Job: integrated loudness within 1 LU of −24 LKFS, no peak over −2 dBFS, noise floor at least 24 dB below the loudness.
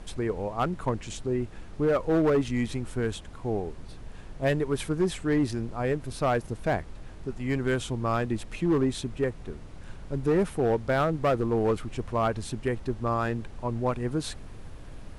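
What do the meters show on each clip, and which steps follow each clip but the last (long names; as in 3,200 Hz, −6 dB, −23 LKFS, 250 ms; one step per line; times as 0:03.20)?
share of clipped samples 1.2%; peaks flattened at −18.5 dBFS; background noise floor −43 dBFS; target noise floor −53 dBFS; integrated loudness −28.5 LKFS; sample peak −18.5 dBFS; target loudness −24.0 LKFS
→ clipped peaks rebuilt −18.5 dBFS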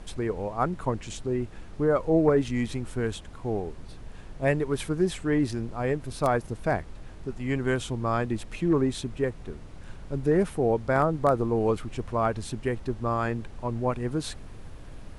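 share of clipped samples 0.0%; background noise floor −43 dBFS; target noise floor −52 dBFS
→ noise reduction from a noise print 9 dB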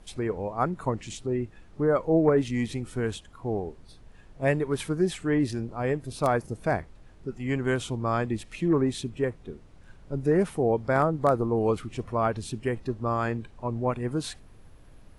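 background noise floor −51 dBFS; target noise floor −52 dBFS
→ noise reduction from a noise print 6 dB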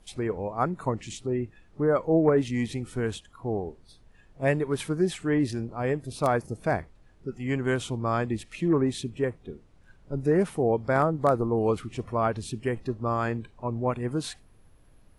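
background noise floor −57 dBFS; integrated loudness −28.0 LKFS; sample peak −9.5 dBFS; target loudness −24.0 LKFS
→ level +4 dB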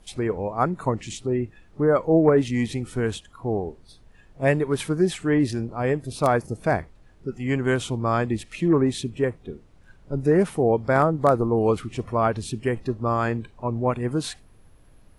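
integrated loudness −24.0 LKFS; sample peak −5.5 dBFS; background noise floor −53 dBFS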